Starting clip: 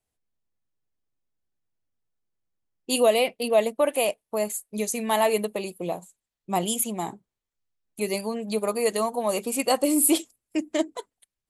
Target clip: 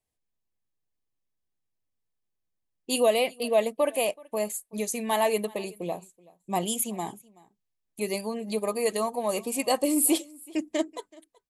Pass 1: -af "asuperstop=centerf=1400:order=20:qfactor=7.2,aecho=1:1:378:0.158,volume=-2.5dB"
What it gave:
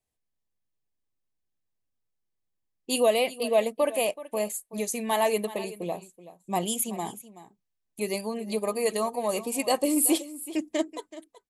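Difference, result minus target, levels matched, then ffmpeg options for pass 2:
echo-to-direct +8 dB
-af "asuperstop=centerf=1400:order=20:qfactor=7.2,aecho=1:1:378:0.0631,volume=-2.5dB"

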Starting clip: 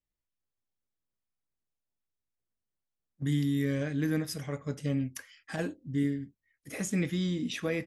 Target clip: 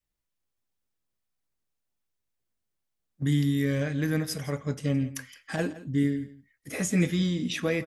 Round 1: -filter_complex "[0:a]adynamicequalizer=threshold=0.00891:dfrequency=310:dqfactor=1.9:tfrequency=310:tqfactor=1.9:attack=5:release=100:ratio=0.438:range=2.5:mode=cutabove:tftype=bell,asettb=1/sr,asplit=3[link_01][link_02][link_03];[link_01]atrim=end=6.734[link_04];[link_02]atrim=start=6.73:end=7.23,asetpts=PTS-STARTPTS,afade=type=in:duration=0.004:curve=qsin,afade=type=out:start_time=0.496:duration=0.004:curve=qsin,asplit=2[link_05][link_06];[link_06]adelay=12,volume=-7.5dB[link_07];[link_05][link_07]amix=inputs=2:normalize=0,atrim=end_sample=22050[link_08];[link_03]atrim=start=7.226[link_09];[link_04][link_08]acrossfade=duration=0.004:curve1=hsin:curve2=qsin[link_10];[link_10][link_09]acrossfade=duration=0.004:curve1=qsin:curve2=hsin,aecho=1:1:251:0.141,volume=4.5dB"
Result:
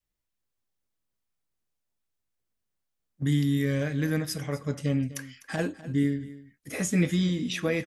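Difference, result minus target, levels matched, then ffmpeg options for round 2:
echo 84 ms late
-filter_complex "[0:a]adynamicequalizer=threshold=0.00891:dfrequency=310:dqfactor=1.9:tfrequency=310:tqfactor=1.9:attack=5:release=100:ratio=0.438:range=2.5:mode=cutabove:tftype=bell,asettb=1/sr,asplit=3[link_01][link_02][link_03];[link_01]atrim=end=6.734[link_04];[link_02]atrim=start=6.73:end=7.23,asetpts=PTS-STARTPTS,afade=type=in:duration=0.004:curve=qsin,afade=type=out:start_time=0.496:duration=0.004:curve=qsin,asplit=2[link_05][link_06];[link_06]adelay=12,volume=-7.5dB[link_07];[link_05][link_07]amix=inputs=2:normalize=0,atrim=end_sample=22050[link_08];[link_03]atrim=start=7.226[link_09];[link_04][link_08]acrossfade=duration=0.004:curve1=hsin:curve2=qsin[link_10];[link_10][link_09]acrossfade=duration=0.004:curve1=qsin:curve2=hsin,aecho=1:1:167:0.141,volume=4.5dB"

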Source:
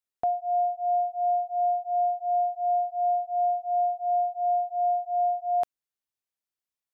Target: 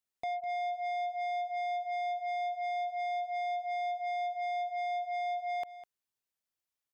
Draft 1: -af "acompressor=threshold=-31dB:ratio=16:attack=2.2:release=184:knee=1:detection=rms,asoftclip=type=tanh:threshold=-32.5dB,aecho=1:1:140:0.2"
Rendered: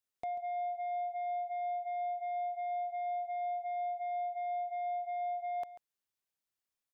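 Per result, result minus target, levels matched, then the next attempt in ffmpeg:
downward compressor: peak gain reduction +7.5 dB; echo 63 ms early
-af "acompressor=threshold=-23dB:ratio=16:attack=2.2:release=184:knee=1:detection=rms,asoftclip=type=tanh:threshold=-32.5dB,aecho=1:1:140:0.2"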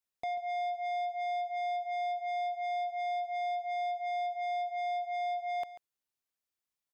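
echo 63 ms early
-af "acompressor=threshold=-23dB:ratio=16:attack=2.2:release=184:knee=1:detection=rms,asoftclip=type=tanh:threshold=-32.5dB,aecho=1:1:203:0.2"

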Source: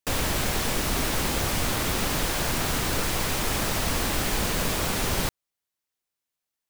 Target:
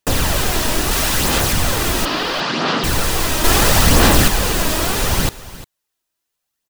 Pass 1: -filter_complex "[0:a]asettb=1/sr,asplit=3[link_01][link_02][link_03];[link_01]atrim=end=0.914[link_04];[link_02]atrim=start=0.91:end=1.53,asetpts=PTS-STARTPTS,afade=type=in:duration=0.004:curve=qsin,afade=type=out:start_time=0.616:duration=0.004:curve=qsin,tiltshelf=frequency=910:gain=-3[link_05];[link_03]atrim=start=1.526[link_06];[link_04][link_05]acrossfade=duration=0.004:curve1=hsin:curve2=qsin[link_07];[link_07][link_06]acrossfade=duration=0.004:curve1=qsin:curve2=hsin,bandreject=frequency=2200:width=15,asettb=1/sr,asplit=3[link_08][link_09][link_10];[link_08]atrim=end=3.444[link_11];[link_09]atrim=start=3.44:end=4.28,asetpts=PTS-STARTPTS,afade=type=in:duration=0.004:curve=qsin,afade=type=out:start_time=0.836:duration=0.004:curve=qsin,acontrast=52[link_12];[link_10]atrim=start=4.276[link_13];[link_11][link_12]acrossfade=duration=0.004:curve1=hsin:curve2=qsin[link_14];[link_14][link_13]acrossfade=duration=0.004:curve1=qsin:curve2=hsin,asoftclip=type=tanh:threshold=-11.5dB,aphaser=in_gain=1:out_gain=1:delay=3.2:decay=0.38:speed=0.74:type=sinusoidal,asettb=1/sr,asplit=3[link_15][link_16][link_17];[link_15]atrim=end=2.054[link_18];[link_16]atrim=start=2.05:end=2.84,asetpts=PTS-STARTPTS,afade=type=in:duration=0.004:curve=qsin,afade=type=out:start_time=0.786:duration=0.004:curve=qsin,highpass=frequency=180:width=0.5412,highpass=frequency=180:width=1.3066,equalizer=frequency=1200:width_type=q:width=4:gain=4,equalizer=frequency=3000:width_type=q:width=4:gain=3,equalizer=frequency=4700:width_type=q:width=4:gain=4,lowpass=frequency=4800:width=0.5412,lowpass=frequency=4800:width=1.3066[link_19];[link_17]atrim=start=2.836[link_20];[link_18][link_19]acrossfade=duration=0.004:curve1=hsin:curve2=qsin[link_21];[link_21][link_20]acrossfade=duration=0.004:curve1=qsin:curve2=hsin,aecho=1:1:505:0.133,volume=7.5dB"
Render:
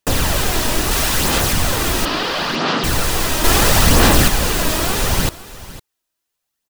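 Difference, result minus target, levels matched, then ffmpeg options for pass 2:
echo 153 ms late
-filter_complex "[0:a]asettb=1/sr,asplit=3[link_01][link_02][link_03];[link_01]atrim=end=0.914[link_04];[link_02]atrim=start=0.91:end=1.53,asetpts=PTS-STARTPTS,afade=type=in:duration=0.004:curve=qsin,afade=type=out:start_time=0.616:duration=0.004:curve=qsin,tiltshelf=frequency=910:gain=-3[link_05];[link_03]atrim=start=1.526[link_06];[link_04][link_05]acrossfade=duration=0.004:curve1=hsin:curve2=qsin[link_07];[link_07][link_06]acrossfade=duration=0.004:curve1=qsin:curve2=hsin,bandreject=frequency=2200:width=15,asettb=1/sr,asplit=3[link_08][link_09][link_10];[link_08]atrim=end=3.444[link_11];[link_09]atrim=start=3.44:end=4.28,asetpts=PTS-STARTPTS,afade=type=in:duration=0.004:curve=qsin,afade=type=out:start_time=0.836:duration=0.004:curve=qsin,acontrast=52[link_12];[link_10]atrim=start=4.276[link_13];[link_11][link_12]acrossfade=duration=0.004:curve1=hsin:curve2=qsin[link_14];[link_14][link_13]acrossfade=duration=0.004:curve1=qsin:curve2=hsin,asoftclip=type=tanh:threshold=-11.5dB,aphaser=in_gain=1:out_gain=1:delay=3.2:decay=0.38:speed=0.74:type=sinusoidal,asettb=1/sr,asplit=3[link_15][link_16][link_17];[link_15]atrim=end=2.054[link_18];[link_16]atrim=start=2.05:end=2.84,asetpts=PTS-STARTPTS,afade=type=in:duration=0.004:curve=qsin,afade=type=out:start_time=0.786:duration=0.004:curve=qsin,highpass=frequency=180:width=0.5412,highpass=frequency=180:width=1.3066,equalizer=frequency=1200:width_type=q:width=4:gain=4,equalizer=frequency=3000:width_type=q:width=4:gain=3,equalizer=frequency=4700:width_type=q:width=4:gain=4,lowpass=frequency=4800:width=0.5412,lowpass=frequency=4800:width=1.3066[link_19];[link_17]atrim=start=2.836[link_20];[link_18][link_19]acrossfade=duration=0.004:curve1=hsin:curve2=qsin[link_21];[link_21][link_20]acrossfade=duration=0.004:curve1=qsin:curve2=hsin,aecho=1:1:352:0.133,volume=7.5dB"

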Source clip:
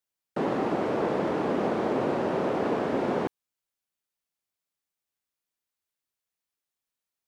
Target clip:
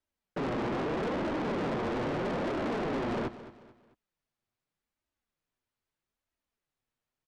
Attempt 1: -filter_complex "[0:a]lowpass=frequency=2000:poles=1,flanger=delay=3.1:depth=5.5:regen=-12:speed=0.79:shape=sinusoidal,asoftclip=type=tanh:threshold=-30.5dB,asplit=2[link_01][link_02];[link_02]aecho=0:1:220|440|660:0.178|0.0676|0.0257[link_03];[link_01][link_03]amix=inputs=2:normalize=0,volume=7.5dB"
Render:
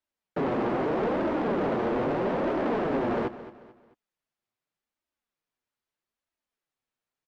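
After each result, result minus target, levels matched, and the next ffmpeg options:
soft clipping: distortion −6 dB; 125 Hz band −3.5 dB
-filter_complex "[0:a]lowpass=frequency=2000:poles=1,flanger=delay=3.1:depth=5.5:regen=-12:speed=0.79:shape=sinusoidal,asoftclip=type=tanh:threshold=-38dB,asplit=2[link_01][link_02];[link_02]aecho=0:1:220|440|660:0.178|0.0676|0.0257[link_03];[link_01][link_03]amix=inputs=2:normalize=0,volume=7.5dB"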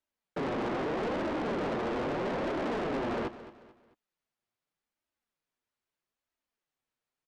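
125 Hz band −3.0 dB
-filter_complex "[0:a]lowpass=frequency=2000:poles=1,lowshelf=frequency=160:gain=10.5,flanger=delay=3.1:depth=5.5:regen=-12:speed=0.79:shape=sinusoidal,asoftclip=type=tanh:threshold=-38dB,asplit=2[link_01][link_02];[link_02]aecho=0:1:220|440|660:0.178|0.0676|0.0257[link_03];[link_01][link_03]amix=inputs=2:normalize=0,volume=7.5dB"

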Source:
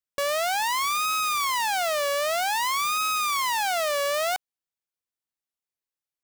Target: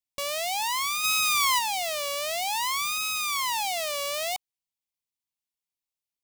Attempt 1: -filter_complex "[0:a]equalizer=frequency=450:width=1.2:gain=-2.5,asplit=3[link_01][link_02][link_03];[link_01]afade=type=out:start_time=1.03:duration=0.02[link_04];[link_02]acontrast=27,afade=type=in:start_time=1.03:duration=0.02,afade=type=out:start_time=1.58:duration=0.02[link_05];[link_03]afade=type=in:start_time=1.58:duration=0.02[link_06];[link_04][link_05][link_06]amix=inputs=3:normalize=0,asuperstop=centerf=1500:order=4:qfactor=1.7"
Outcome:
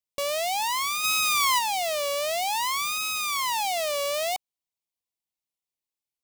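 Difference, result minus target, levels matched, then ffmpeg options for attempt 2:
500 Hz band +4.0 dB
-filter_complex "[0:a]equalizer=frequency=450:width=1.2:gain=-10.5,asplit=3[link_01][link_02][link_03];[link_01]afade=type=out:start_time=1.03:duration=0.02[link_04];[link_02]acontrast=27,afade=type=in:start_time=1.03:duration=0.02,afade=type=out:start_time=1.58:duration=0.02[link_05];[link_03]afade=type=in:start_time=1.58:duration=0.02[link_06];[link_04][link_05][link_06]amix=inputs=3:normalize=0,asuperstop=centerf=1500:order=4:qfactor=1.7"

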